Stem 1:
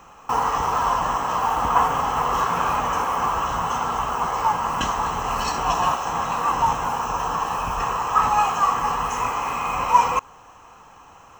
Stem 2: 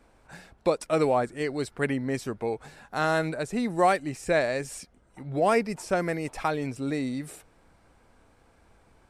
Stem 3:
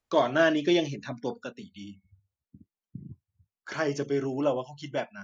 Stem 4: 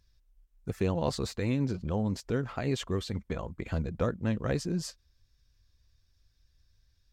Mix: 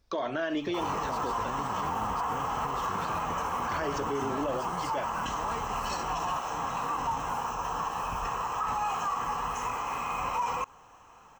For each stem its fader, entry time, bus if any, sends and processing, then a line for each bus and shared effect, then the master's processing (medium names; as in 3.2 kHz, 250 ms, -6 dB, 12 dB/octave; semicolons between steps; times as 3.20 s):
-7.5 dB, 0.45 s, no send, none
-18.0 dB, 0.00 s, no send, none
+3.0 dB, 0.00 s, no send, bass shelf 180 Hz -12 dB; compression, threshold -24 dBFS, peak gain reduction 6 dB; treble shelf 6.4 kHz -11 dB
-2.0 dB, 0.00 s, no send, compression, threshold -35 dBFS, peak gain reduction 11 dB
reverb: none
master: peak limiter -22.5 dBFS, peak gain reduction 10.5 dB